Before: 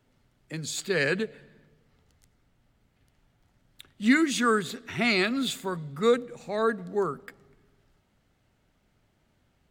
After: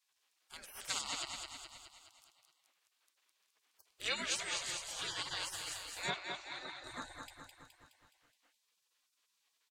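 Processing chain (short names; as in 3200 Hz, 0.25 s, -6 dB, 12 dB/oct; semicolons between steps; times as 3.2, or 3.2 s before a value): on a send: feedback echo 0.21 s, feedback 55%, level -5 dB; on the sum: treble ducked by the level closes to 2700 Hz, closed at -12.5 dBFS; spectral gate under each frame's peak -25 dB weak; 6.1–6.84 three-band isolator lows -13 dB, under 250 Hz, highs -23 dB, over 5900 Hz; gain +1 dB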